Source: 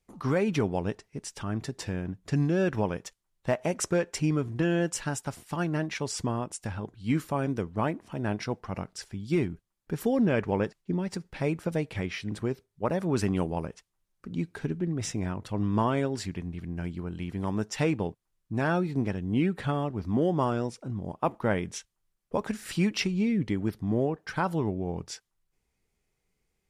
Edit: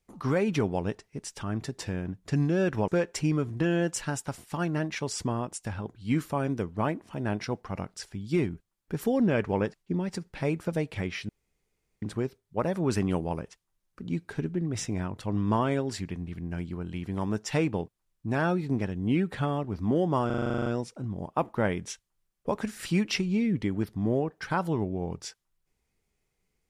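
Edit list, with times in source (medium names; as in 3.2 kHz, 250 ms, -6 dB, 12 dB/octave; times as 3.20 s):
2.88–3.87 s: delete
12.28 s: insert room tone 0.73 s
20.52 s: stutter 0.04 s, 11 plays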